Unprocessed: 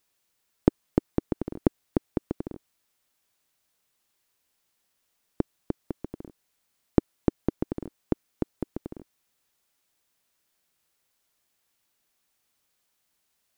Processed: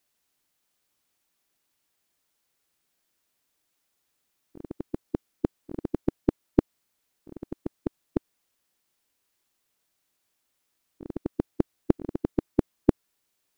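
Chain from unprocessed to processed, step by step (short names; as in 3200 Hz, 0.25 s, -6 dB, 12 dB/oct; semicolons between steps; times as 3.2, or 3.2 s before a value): whole clip reversed; bell 310 Hz +3 dB 0.69 oct; gain -1.5 dB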